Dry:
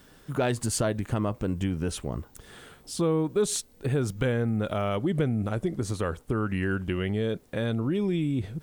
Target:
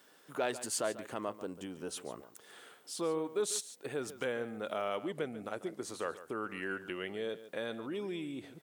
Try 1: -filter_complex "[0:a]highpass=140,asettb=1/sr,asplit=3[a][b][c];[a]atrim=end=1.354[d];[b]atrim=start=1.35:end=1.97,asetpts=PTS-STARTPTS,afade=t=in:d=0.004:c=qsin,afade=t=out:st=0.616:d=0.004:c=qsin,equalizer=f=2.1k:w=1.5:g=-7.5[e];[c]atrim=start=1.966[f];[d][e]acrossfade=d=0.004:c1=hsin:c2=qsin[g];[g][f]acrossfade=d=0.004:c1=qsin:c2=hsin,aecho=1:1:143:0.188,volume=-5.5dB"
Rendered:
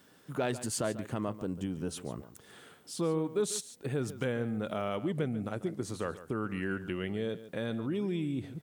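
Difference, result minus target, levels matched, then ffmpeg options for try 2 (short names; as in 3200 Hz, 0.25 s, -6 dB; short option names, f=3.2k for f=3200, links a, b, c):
125 Hz band +11.5 dB
-filter_complex "[0:a]highpass=400,asettb=1/sr,asplit=3[a][b][c];[a]atrim=end=1.354[d];[b]atrim=start=1.35:end=1.97,asetpts=PTS-STARTPTS,afade=t=in:d=0.004:c=qsin,afade=t=out:st=0.616:d=0.004:c=qsin,equalizer=f=2.1k:w=1.5:g=-7.5[e];[c]atrim=start=1.966[f];[d][e]acrossfade=d=0.004:c1=hsin:c2=qsin[g];[g][f]acrossfade=d=0.004:c1=qsin:c2=hsin,aecho=1:1:143:0.188,volume=-5.5dB"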